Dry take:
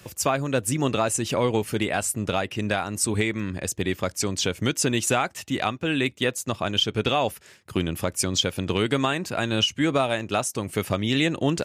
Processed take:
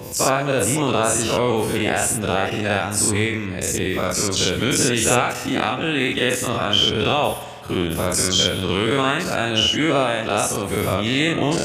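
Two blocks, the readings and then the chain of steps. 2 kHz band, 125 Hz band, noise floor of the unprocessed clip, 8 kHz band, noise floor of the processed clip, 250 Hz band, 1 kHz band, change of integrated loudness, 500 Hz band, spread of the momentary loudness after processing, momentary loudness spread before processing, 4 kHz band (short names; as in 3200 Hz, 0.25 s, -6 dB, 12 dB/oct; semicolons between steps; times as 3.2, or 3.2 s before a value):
+6.0 dB, +3.5 dB, -52 dBFS, +6.5 dB, -29 dBFS, +3.5 dB, +5.5 dB, +5.5 dB, +5.0 dB, 5 LU, 5 LU, +6.5 dB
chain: spectral dilation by 0.12 s; spring tank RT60 1.8 s, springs 49 ms, chirp 45 ms, DRR 10.5 dB; gain -1 dB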